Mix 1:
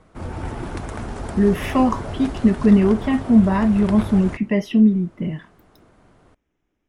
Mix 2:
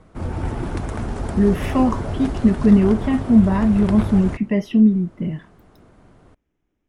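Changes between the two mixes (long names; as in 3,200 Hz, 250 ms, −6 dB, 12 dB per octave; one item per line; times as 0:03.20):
speech −3.5 dB
master: add low-shelf EQ 430 Hz +5 dB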